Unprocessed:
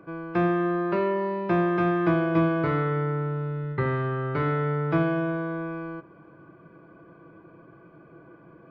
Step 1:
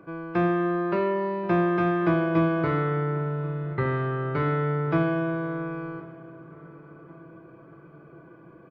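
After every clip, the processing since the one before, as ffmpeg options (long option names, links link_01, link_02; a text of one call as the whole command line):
ffmpeg -i in.wav -filter_complex "[0:a]asplit=2[link_01][link_02];[link_02]adelay=1080,lowpass=frequency=1700:poles=1,volume=-20dB,asplit=2[link_03][link_04];[link_04]adelay=1080,lowpass=frequency=1700:poles=1,volume=0.51,asplit=2[link_05][link_06];[link_06]adelay=1080,lowpass=frequency=1700:poles=1,volume=0.51,asplit=2[link_07][link_08];[link_08]adelay=1080,lowpass=frequency=1700:poles=1,volume=0.51[link_09];[link_01][link_03][link_05][link_07][link_09]amix=inputs=5:normalize=0" out.wav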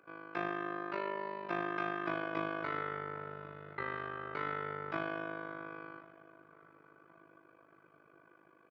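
ffmpeg -i in.wav -af "highpass=frequency=1400:poles=1,tremolo=f=51:d=0.824,volume=-1dB" out.wav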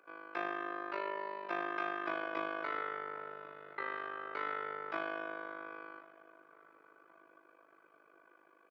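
ffmpeg -i in.wav -af "highpass=380" out.wav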